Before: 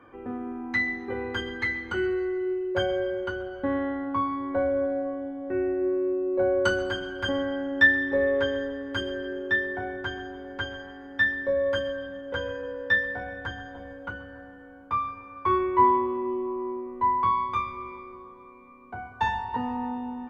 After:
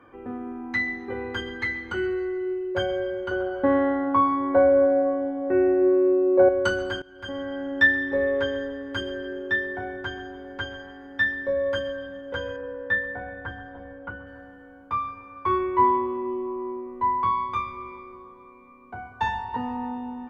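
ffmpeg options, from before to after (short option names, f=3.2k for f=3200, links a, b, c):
-filter_complex "[0:a]asettb=1/sr,asplit=3[a][b][c];[a]atrim=end=3.314[d];[b]atrim=start=3.31:end=6.49,asetpts=PTS-STARTPTS,afade=t=in:d=0.004:c=qsin,afade=t=out:st=3.176:d=0.004:c=qsin,equalizer=f=670:w=0.39:g=8.5[e];[c]atrim=start=6.486[f];[d][e]acrossfade=d=0.004:c1=hsin:c2=qsin[g];[g][f]acrossfade=d=0.004:c1=qsin:c2=hsin,asettb=1/sr,asplit=3[h][i][j];[h]atrim=end=12.564[k];[i]atrim=start=12.56:end=14.27,asetpts=PTS-STARTPTS,afade=t=in:d=0.004:c=qsin,afade=t=out:st=1.706:d=0.004:c=qsin,lowpass=2.2k[l];[j]atrim=start=14.266[m];[k][l]acrossfade=d=0.004:c1=hsin:c2=qsin[n];[n][m]acrossfade=d=0.004:c1=qsin:c2=hsin,asplit=2[o][p];[o]atrim=end=7.02,asetpts=PTS-STARTPTS,afade=t=out:st=7.016:d=0.004:c=hsin:silence=0.0944061[q];[p]atrim=start=7.02,asetpts=PTS-STARTPTS,afade=t=in:d=0.67:silence=0.0944061[r];[q][r]concat=n=2:v=0:a=1"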